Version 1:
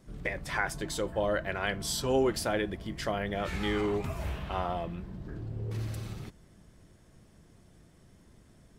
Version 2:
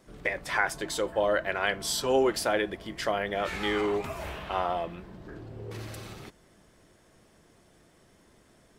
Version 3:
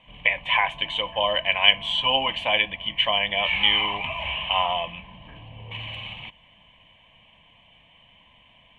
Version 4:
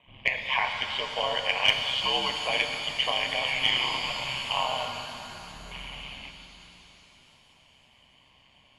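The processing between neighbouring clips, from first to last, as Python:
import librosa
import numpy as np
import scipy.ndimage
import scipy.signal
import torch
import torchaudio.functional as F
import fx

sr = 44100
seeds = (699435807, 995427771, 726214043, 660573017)

y1 = fx.bass_treble(x, sr, bass_db=-12, treble_db=-2)
y1 = F.gain(torch.from_numpy(y1), 4.5).numpy()
y2 = fx.lowpass_res(y1, sr, hz=3000.0, q=13.0)
y2 = fx.fixed_phaser(y2, sr, hz=1400.0, stages=6)
y2 = fx.small_body(y2, sr, hz=(1000.0, 2300.0), ring_ms=25, db=11)
y2 = F.gain(torch.from_numpy(y2), 2.0).numpy()
y3 = y2 * np.sin(2.0 * np.pi * 66.0 * np.arange(len(y2)) / sr)
y3 = fx.cheby_harmonics(y3, sr, harmonics=(2, 5), levels_db=(-18, -30), full_scale_db=-2.0)
y3 = fx.rev_shimmer(y3, sr, seeds[0], rt60_s=3.2, semitones=7, shimmer_db=-8, drr_db=4.5)
y3 = F.gain(torch.from_numpy(y3), -4.0).numpy()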